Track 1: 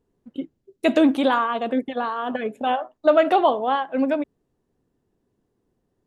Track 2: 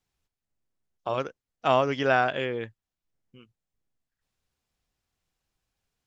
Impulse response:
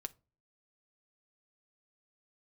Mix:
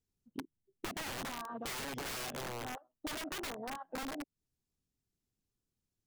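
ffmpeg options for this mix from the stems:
-filter_complex "[0:a]bass=f=250:g=13,treble=f=4k:g=-14,volume=-10.5dB[a];[1:a]bass=f=250:g=7,treble=f=4k:g=11,volume=-0.5dB,asplit=2[b][c];[c]apad=whole_len=267556[d];[a][d]sidechaincompress=threshold=-24dB:ratio=8:attack=16:release=506[e];[e][b]amix=inputs=2:normalize=0,afwtdn=0.0398,aeval=exprs='(mod(16.8*val(0)+1,2)-1)/16.8':c=same,acompressor=threshold=-39dB:ratio=10"

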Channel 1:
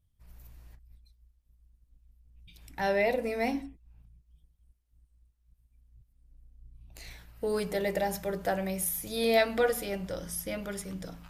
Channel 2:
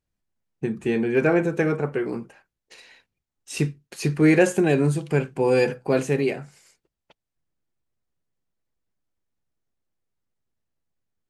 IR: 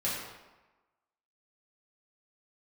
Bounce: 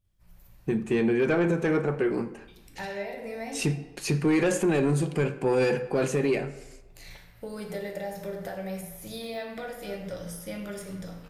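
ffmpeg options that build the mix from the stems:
-filter_complex "[0:a]deesser=0.7,bandreject=f=60:t=h:w=6,bandreject=f=120:t=h:w=6,bandreject=f=180:t=h:w=6,bandreject=f=240:t=h:w=6,bandreject=f=300:t=h:w=6,bandreject=f=360:t=h:w=6,bandreject=f=420:t=h:w=6,bandreject=f=480:t=h:w=6,acompressor=threshold=-33dB:ratio=6,volume=-5.5dB,asplit=2[a][b];[b]volume=-4dB[c];[1:a]asoftclip=type=tanh:threshold=-14dB,adelay=50,volume=0dB,asplit=2[d][e];[e]volume=-18dB[f];[2:a]atrim=start_sample=2205[g];[c][f]amix=inputs=2:normalize=0[h];[h][g]afir=irnorm=-1:irlink=0[i];[a][d][i]amix=inputs=3:normalize=0,alimiter=limit=-17dB:level=0:latency=1:release=41"

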